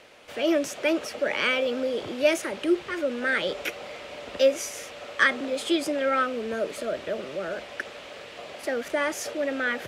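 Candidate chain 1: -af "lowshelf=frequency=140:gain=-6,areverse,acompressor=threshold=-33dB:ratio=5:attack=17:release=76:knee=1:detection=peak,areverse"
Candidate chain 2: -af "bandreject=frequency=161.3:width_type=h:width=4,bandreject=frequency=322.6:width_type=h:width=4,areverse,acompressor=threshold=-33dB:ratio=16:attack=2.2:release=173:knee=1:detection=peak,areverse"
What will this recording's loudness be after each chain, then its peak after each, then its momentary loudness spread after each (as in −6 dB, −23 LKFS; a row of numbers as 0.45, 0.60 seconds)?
−34.5, −38.5 LKFS; −19.0, −25.0 dBFS; 7, 3 LU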